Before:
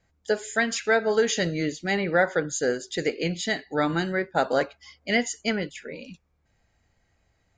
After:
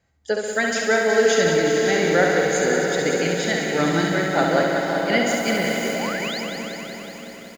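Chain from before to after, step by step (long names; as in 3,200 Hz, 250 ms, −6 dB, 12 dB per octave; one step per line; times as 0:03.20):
high-pass filter 43 Hz
on a send: feedback delay with all-pass diffusion 538 ms, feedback 51%, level −6 dB
0:05.26–0:05.93: on the sum: background noise white −46 dBFS
repeating echo 68 ms, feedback 56%, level −4.5 dB
0:05.83–0:06.41: sound drawn into the spectrogram rise 340–5,300 Hz −33 dBFS
feedback echo at a low word length 186 ms, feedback 80%, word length 8 bits, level −7 dB
level +1 dB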